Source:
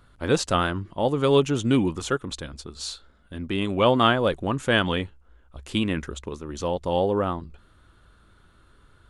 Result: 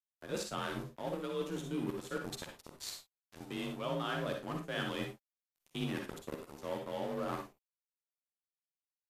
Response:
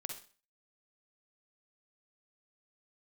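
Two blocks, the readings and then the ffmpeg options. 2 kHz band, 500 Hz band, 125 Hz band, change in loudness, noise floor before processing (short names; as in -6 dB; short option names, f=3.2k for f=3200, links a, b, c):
-14.5 dB, -16.0 dB, -16.0 dB, -15.5 dB, -57 dBFS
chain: -filter_complex "[0:a]afreqshift=35,acrossover=split=180[a][b];[b]acrusher=bits=7:mix=0:aa=0.000001[c];[a][c]amix=inputs=2:normalize=0,highshelf=f=8.8k:g=4.5,asplit=2[d][e];[e]adelay=13,volume=-7dB[f];[d][f]amix=inputs=2:normalize=0,bandreject=f=191.4:t=h:w=4,bandreject=f=382.8:t=h:w=4,asplit=2[g][h];[h]adelay=360,highpass=300,lowpass=3.4k,asoftclip=type=hard:threshold=-13dB,volume=-24dB[i];[g][i]amix=inputs=2:normalize=0,aeval=exprs='sgn(val(0))*max(abs(val(0))-0.0282,0)':c=same,areverse,acompressor=threshold=-33dB:ratio=5,areverse[j];[1:a]atrim=start_sample=2205,afade=t=out:st=0.17:d=0.01,atrim=end_sample=7938[k];[j][k]afir=irnorm=-1:irlink=0" -ar 48000 -c:a mp2 -b:a 192k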